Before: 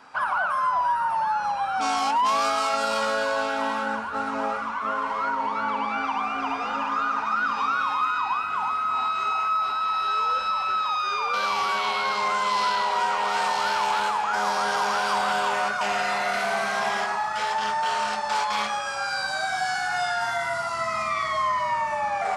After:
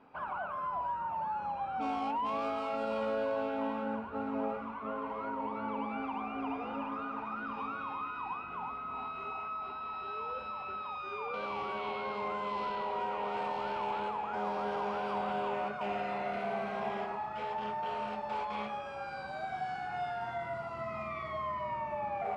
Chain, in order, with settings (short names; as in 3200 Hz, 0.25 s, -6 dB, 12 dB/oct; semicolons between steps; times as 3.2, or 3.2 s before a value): EQ curve 420 Hz 0 dB, 1700 Hz -17 dB, 2500 Hz -10 dB, 5900 Hz -29 dB; gain -2 dB